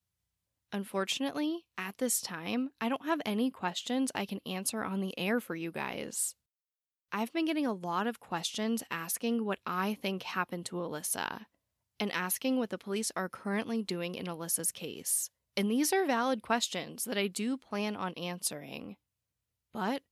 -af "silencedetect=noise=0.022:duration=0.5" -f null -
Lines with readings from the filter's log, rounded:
silence_start: 0.00
silence_end: 0.73 | silence_duration: 0.73
silence_start: 6.29
silence_end: 7.12 | silence_duration: 0.83
silence_start: 11.37
silence_end: 12.00 | silence_duration: 0.63
silence_start: 18.88
silence_end: 19.75 | silence_duration: 0.87